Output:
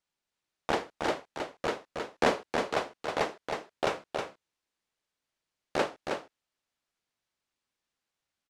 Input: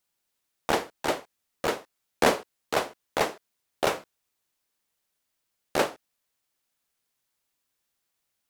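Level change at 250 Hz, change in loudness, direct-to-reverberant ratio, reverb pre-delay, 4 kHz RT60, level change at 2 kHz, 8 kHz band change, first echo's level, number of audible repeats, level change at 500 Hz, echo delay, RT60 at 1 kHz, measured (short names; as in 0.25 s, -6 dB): -2.5 dB, -4.0 dB, none, none, none, -3.0 dB, -8.5 dB, -5.0 dB, 1, -2.5 dB, 0.317 s, none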